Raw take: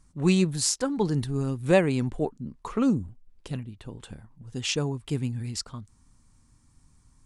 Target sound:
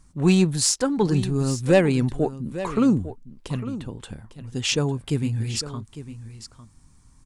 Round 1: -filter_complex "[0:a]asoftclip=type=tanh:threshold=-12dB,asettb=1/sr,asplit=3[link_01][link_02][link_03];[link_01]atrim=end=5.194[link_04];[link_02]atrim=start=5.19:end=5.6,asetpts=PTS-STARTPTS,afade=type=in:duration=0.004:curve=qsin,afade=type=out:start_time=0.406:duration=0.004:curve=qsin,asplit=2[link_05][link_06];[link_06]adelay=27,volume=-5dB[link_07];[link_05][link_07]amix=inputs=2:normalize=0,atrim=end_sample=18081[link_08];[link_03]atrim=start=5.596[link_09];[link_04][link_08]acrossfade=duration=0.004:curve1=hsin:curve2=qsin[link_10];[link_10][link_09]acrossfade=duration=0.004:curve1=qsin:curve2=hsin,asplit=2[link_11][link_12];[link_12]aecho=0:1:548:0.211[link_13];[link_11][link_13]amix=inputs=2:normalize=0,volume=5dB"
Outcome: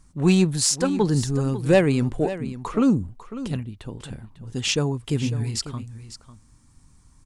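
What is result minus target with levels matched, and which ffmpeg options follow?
echo 305 ms early
-filter_complex "[0:a]asoftclip=type=tanh:threshold=-12dB,asettb=1/sr,asplit=3[link_01][link_02][link_03];[link_01]atrim=end=5.194[link_04];[link_02]atrim=start=5.19:end=5.6,asetpts=PTS-STARTPTS,afade=type=in:duration=0.004:curve=qsin,afade=type=out:start_time=0.406:duration=0.004:curve=qsin,asplit=2[link_05][link_06];[link_06]adelay=27,volume=-5dB[link_07];[link_05][link_07]amix=inputs=2:normalize=0,atrim=end_sample=18081[link_08];[link_03]atrim=start=5.596[link_09];[link_04][link_08]acrossfade=duration=0.004:curve1=hsin:curve2=qsin[link_10];[link_10][link_09]acrossfade=duration=0.004:curve1=qsin:curve2=hsin,asplit=2[link_11][link_12];[link_12]aecho=0:1:853:0.211[link_13];[link_11][link_13]amix=inputs=2:normalize=0,volume=5dB"

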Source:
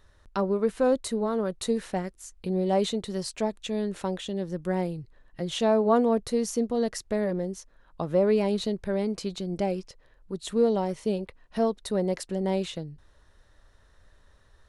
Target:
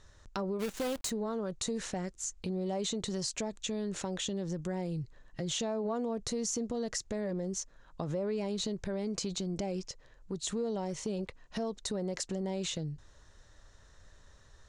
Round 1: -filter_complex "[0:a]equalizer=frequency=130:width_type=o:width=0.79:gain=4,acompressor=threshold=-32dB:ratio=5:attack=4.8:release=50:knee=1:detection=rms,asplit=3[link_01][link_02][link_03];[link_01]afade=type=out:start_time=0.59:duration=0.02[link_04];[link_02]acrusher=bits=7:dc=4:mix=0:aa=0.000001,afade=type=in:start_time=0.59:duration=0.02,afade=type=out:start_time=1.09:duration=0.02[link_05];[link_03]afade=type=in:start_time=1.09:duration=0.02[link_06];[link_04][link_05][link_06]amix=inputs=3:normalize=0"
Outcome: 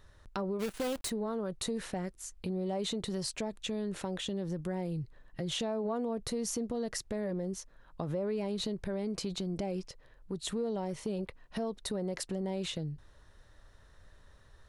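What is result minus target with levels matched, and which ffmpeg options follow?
8,000 Hz band −4.0 dB
-filter_complex "[0:a]lowpass=frequency=6900:width_type=q:width=3.3,equalizer=frequency=130:width_type=o:width=0.79:gain=4,acompressor=threshold=-32dB:ratio=5:attack=4.8:release=50:knee=1:detection=rms,asplit=3[link_01][link_02][link_03];[link_01]afade=type=out:start_time=0.59:duration=0.02[link_04];[link_02]acrusher=bits=7:dc=4:mix=0:aa=0.000001,afade=type=in:start_time=0.59:duration=0.02,afade=type=out:start_time=1.09:duration=0.02[link_05];[link_03]afade=type=in:start_time=1.09:duration=0.02[link_06];[link_04][link_05][link_06]amix=inputs=3:normalize=0"

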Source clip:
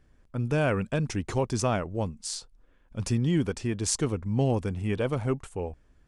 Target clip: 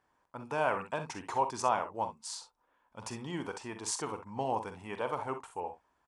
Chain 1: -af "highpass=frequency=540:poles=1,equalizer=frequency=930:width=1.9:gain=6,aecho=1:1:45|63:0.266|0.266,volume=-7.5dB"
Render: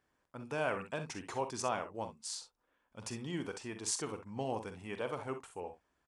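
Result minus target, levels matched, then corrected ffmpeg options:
1,000 Hz band −4.5 dB
-af "highpass=frequency=540:poles=1,equalizer=frequency=930:width=1.9:gain=17,aecho=1:1:45|63:0.266|0.266,volume=-7.5dB"

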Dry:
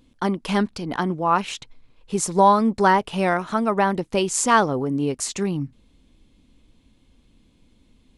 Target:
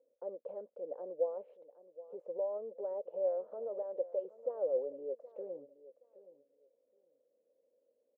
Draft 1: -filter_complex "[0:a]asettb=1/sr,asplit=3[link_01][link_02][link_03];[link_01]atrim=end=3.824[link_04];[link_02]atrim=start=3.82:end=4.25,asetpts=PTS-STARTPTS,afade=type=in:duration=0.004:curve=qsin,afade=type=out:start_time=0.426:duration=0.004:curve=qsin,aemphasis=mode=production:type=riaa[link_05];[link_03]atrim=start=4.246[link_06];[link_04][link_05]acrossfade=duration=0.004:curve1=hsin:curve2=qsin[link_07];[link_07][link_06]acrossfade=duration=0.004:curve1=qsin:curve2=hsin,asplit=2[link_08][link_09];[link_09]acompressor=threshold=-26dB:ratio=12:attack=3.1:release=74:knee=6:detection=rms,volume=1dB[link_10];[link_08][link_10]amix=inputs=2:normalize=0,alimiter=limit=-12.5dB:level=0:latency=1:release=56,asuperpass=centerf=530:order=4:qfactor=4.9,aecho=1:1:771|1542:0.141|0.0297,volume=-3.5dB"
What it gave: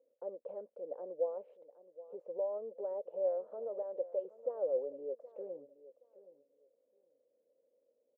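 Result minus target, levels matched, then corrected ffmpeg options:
downward compressor: peak gain reduction +8.5 dB
-filter_complex "[0:a]asettb=1/sr,asplit=3[link_01][link_02][link_03];[link_01]atrim=end=3.824[link_04];[link_02]atrim=start=3.82:end=4.25,asetpts=PTS-STARTPTS,afade=type=in:duration=0.004:curve=qsin,afade=type=out:start_time=0.426:duration=0.004:curve=qsin,aemphasis=mode=production:type=riaa[link_05];[link_03]atrim=start=4.246[link_06];[link_04][link_05]acrossfade=duration=0.004:curve1=hsin:curve2=qsin[link_07];[link_07][link_06]acrossfade=duration=0.004:curve1=qsin:curve2=hsin,asplit=2[link_08][link_09];[link_09]acompressor=threshold=-17dB:ratio=12:attack=3.1:release=74:knee=6:detection=rms,volume=1dB[link_10];[link_08][link_10]amix=inputs=2:normalize=0,alimiter=limit=-12.5dB:level=0:latency=1:release=56,asuperpass=centerf=530:order=4:qfactor=4.9,aecho=1:1:771|1542:0.141|0.0297,volume=-3.5dB"

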